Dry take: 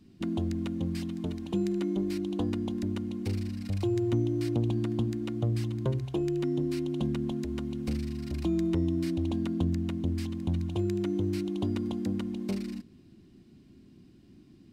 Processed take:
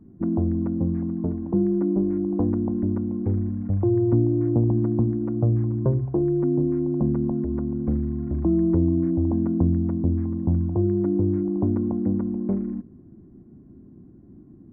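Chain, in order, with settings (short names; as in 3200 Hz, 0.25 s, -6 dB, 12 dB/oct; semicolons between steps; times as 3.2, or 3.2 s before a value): Gaussian blur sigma 7.7 samples; gain +8 dB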